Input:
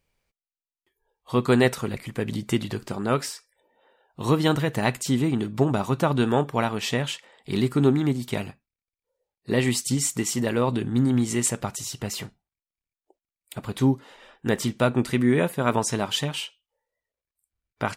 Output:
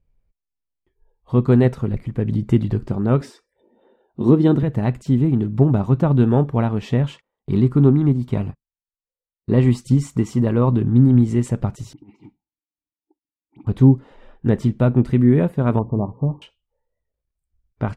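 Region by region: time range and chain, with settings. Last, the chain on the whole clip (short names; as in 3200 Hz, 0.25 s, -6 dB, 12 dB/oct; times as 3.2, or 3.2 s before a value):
3.21–4.63 HPF 170 Hz 6 dB/oct + small resonant body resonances 240/350/3600 Hz, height 14 dB, ringing for 55 ms
7.04–10.94 gate -47 dBFS, range -26 dB + bell 1100 Hz +6 dB 0.44 oct + notch 1800 Hz, Q 28
11.93–13.67 dispersion highs, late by 58 ms, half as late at 2100 Hz + negative-ratio compressor -34 dBFS, ratio -0.5 + vowel filter u
15.79–16.42 brick-wall FIR low-pass 1200 Hz + notches 60/120/180/240/300/360 Hz
whole clip: AGC gain up to 7 dB; tilt -4.5 dB/oct; gain -8 dB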